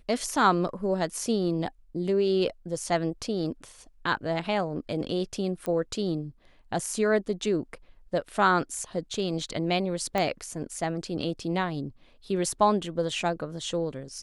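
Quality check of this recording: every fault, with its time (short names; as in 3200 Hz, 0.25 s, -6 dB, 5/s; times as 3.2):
5.66 pop -18 dBFS
10.18 pop -13 dBFS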